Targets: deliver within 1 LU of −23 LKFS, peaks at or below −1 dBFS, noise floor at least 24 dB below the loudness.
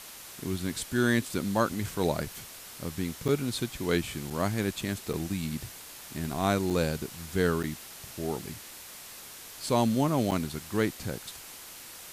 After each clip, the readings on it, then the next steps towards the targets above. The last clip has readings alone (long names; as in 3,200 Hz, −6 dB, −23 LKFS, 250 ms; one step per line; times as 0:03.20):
number of dropouts 6; longest dropout 6.7 ms; background noise floor −46 dBFS; target noise floor −55 dBFS; integrated loudness −30.5 LKFS; sample peak −12.5 dBFS; target loudness −23.0 LKFS
→ repair the gap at 0:03.28/0:04.30/0:05.13/0:06.70/0:07.63/0:10.31, 6.7 ms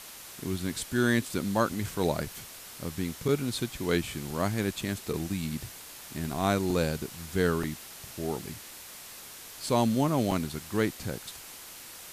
number of dropouts 0; background noise floor −46 dBFS; target noise floor −55 dBFS
→ broadband denoise 9 dB, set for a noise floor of −46 dBFS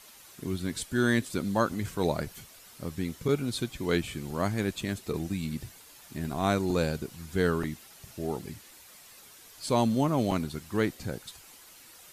background noise floor −53 dBFS; target noise floor −55 dBFS
→ broadband denoise 6 dB, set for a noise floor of −53 dBFS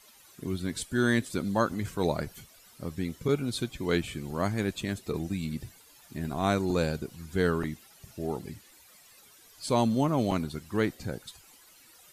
background noise floor −57 dBFS; integrated loudness −30.5 LKFS; sample peak −12.5 dBFS; target loudness −23.0 LKFS
→ level +7.5 dB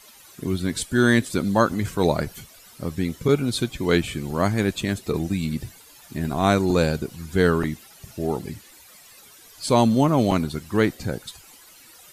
integrated loudness −23.0 LKFS; sample peak −5.0 dBFS; background noise floor −49 dBFS